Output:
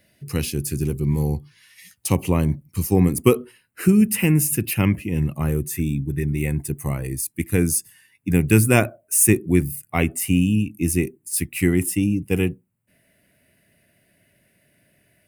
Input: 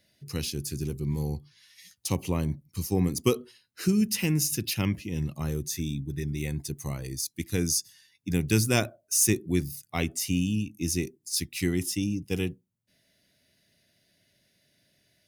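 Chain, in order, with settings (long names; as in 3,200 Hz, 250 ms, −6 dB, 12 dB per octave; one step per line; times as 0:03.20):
flat-topped bell 4,700 Hz −8 dB 1.2 octaves, from 0:03.12 −15 dB
level +8.5 dB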